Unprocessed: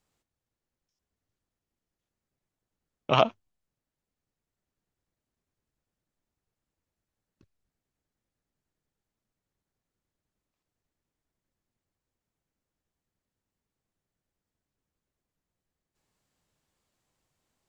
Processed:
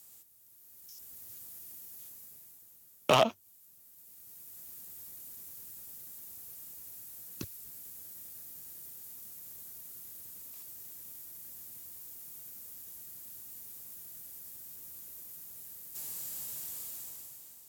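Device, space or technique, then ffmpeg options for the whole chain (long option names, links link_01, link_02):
FM broadcast chain: -filter_complex "[0:a]highpass=74,dynaudnorm=framelen=200:gausssize=9:maxgain=15dB,acrossover=split=300|940[link_01][link_02][link_03];[link_01]acompressor=threshold=-41dB:ratio=4[link_04];[link_02]acompressor=threshold=-26dB:ratio=4[link_05];[link_03]acompressor=threshold=-35dB:ratio=4[link_06];[link_04][link_05][link_06]amix=inputs=3:normalize=0,aemphasis=mode=production:type=50fm,alimiter=limit=-19.5dB:level=0:latency=1:release=16,asoftclip=type=hard:threshold=-23dB,lowpass=frequency=15000:width=0.5412,lowpass=frequency=15000:width=1.3066,aemphasis=mode=production:type=50fm,volume=7.5dB"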